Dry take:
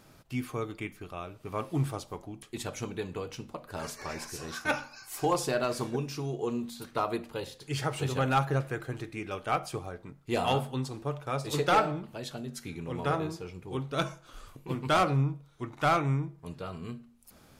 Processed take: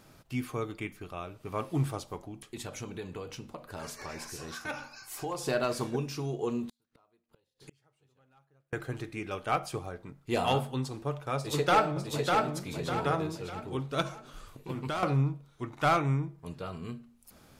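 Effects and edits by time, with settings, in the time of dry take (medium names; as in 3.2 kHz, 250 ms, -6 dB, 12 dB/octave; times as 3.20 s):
2.21–5.46 s: compression 2:1, threshold -38 dBFS
6.68–8.73 s: inverted gate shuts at -35 dBFS, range -39 dB
11.36–12.52 s: echo throw 600 ms, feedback 40%, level -3 dB
14.01–15.03 s: compression, threshold -30 dBFS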